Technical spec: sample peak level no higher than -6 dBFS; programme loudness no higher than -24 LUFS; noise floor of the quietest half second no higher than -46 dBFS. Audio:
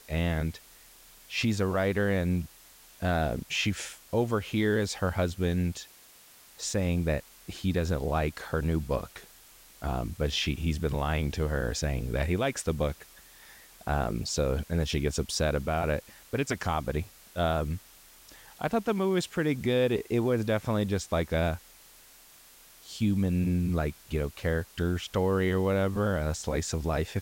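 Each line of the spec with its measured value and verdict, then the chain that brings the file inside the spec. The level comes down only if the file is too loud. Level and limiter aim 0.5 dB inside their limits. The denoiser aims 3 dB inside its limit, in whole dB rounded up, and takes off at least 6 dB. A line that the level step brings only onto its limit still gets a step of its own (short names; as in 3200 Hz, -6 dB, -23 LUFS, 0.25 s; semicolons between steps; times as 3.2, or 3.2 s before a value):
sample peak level -16.5 dBFS: OK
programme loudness -29.5 LUFS: OK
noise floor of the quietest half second -55 dBFS: OK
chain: none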